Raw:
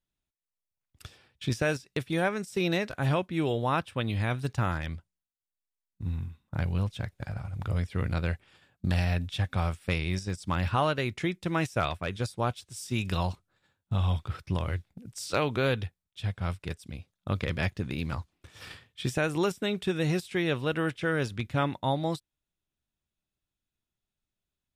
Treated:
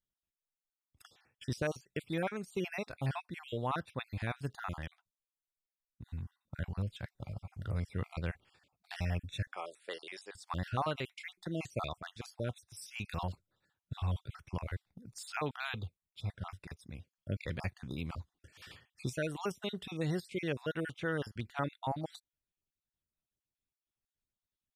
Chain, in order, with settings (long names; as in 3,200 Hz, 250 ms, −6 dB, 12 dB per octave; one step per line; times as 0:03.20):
time-frequency cells dropped at random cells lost 40%
0:09.47–0:10.35: Chebyshev band-pass filter 410–9,700 Hz, order 3
level −6.5 dB